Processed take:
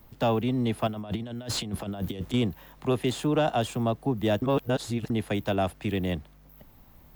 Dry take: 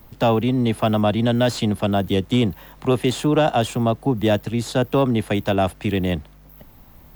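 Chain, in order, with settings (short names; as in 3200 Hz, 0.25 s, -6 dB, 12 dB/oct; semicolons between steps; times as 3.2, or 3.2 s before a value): 0.87–2.34 negative-ratio compressor -24 dBFS, ratio -0.5; 4.42–5.1 reverse; gain -7 dB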